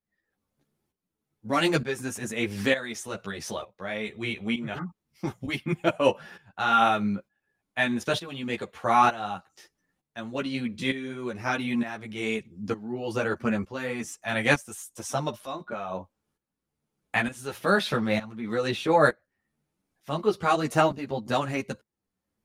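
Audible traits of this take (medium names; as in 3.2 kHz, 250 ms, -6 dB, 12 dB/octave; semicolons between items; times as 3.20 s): tremolo saw up 1.1 Hz, depth 80%; a shimmering, thickened sound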